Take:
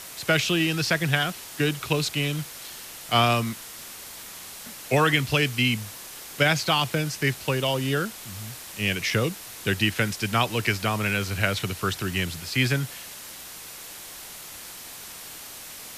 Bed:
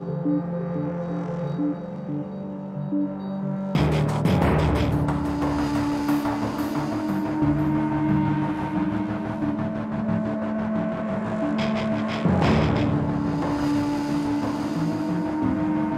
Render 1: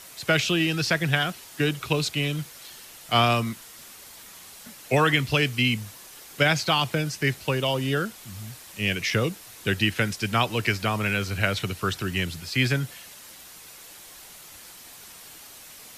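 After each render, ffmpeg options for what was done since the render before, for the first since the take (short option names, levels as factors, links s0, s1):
-af "afftdn=nr=6:nf=-41"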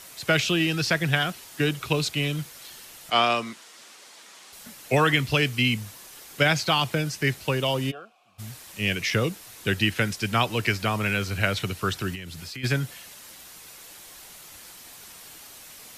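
-filter_complex "[0:a]asettb=1/sr,asplit=3[s0][s1][s2];[s0]atrim=end=3.104[s3];[s1]atrim=start=3.1:end=4.53,asetpts=PTS-STARTPTS,afade=t=in:d=0.004:c=qsin,afade=t=out:st=1.426:d=0.004:c=qsin,highpass=300,lowpass=7400[s4];[s2]atrim=start=4.526[s5];[s3][s4]acrossfade=d=0.004:c1=hsin:c2=qsin[s6];[s6][s5]acrossfade=d=0.004:c1=qsin:c2=hsin,asplit=3[s7][s8][s9];[s7]afade=t=out:st=7.9:d=0.02[s10];[s8]asplit=3[s11][s12][s13];[s11]bandpass=f=730:t=q:w=8,volume=1[s14];[s12]bandpass=f=1090:t=q:w=8,volume=0.501[s15];[s13]bandpass=f=2440:t=q:w=8,volume=0.355[s16];[s14][s15][s16]amix=inputs=3:normalize=0,afade=t=in:st=7.9:d=0.02,afade=t=out:st=8.38:d=0.02[s17];[s9]afade=t=in:st=8.38:d=0.02[s18];[s10][s17][s18]amix=inputs=3:normalize=0,asplit=3[s19][s20][s21];[s19]afade=t=out:st=12.14:d=0.02[s22];[s20]acompressor=threshold=0.02:ratio=8:attack=3.2:release=140:knee=1:detection=peak,afade=t=in:st=12.14:d=0.02,afade=t=out:st=12.63:d=0.02[s23];[s21]afade=t=in:st=12.63:d=0.02[s24];[s22][s23][s24]amix=inputs=3:normalize=0"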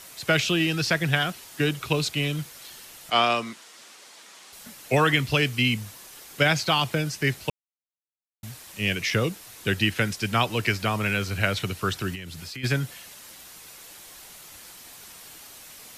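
-filter_complex "[0:a]asplit=3[s0][s1][s2];[s0]atrim=end=7.5,asetpts=PTS-STARTPTS,afade=t=out:st=7.496:d=0.004:c=hsin[s3];[s1]atrim=start=7.5:end=8.43,asetpts=PTS-STARTPTS,volume=0[s4];[s2]atrim=start=8.43,asetpts=PTS-STARTPTS,afade=t=in:d=0.004:c=hsin[s5];[s3][s4][s5]concat=n=3:v=0:a=1"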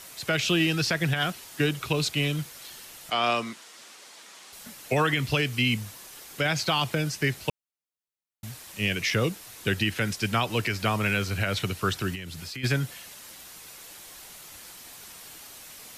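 -af "alimiter=limit=0.211:level=0:latency=1:release=94"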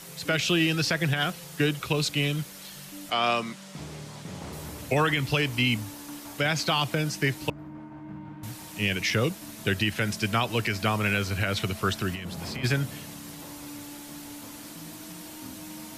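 -filter_complex "[1:a]volume=0.106[s0];[0:a][s0]amix=inputs=2:normalize=0"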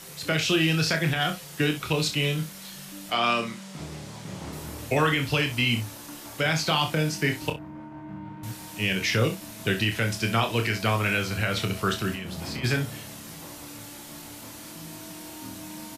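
-filter_complex "[0:a]asplit=2[s0][s1];[s1]adelay=26,volume=0.447[s2];[s0][s2]amix=inputs=2:normalize=0,aecho=1:1:37|63:0.251|0.15"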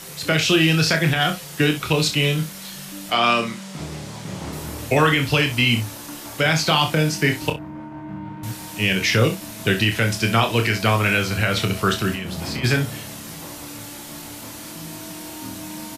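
-af "volume=2"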